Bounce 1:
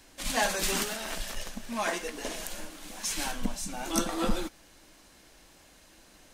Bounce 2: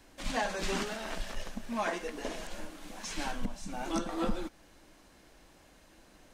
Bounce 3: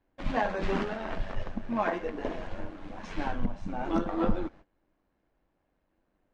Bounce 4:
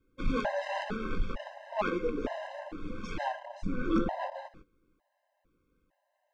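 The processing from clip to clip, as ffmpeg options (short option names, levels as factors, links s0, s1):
-filter_complex "[0:a]acrossover=split=7800[s0][s1];[s1]acompressor=threshold=0.00282:ratio=4:attack=1:release=60[s2];[s0][s2]amix=inputs=2:normalize=0,highshelf=f=2400:g=-8,alimiter=limit=0.0891:level=0:latency=1:release=308"
-af "tremolo=f=94:d=0.4,agate=range=0.1:threshold=0.002:ratio=16:detection=peak,adynamicsmooth=sensitivity=0.5:basefreq=2000,volume=2.24"
-af "asoftclip=type=tanh:threshold=0.0668,afftfilt=real='re*gt(sin(2*PI*1.1*pts/sr)*(1-2*mod(floor(b*sr/1024/530),2)),0)':imag='im*gt(sin(2*PI*1.1*pts/sr)*(1-2*mod(floor(b*sr/1024/530),2)),0)':win_size=1024:overlap=0.75,volume=1.68"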